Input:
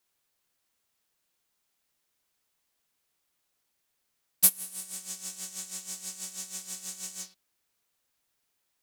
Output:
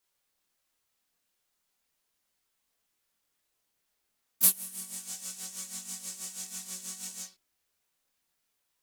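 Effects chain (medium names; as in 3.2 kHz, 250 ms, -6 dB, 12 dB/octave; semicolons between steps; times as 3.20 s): harmony voices +4 st -7 dB; chorus voices 4, 0.32 Hz, delay 25 ms, depth 2.8 ms; trim +1.5 dB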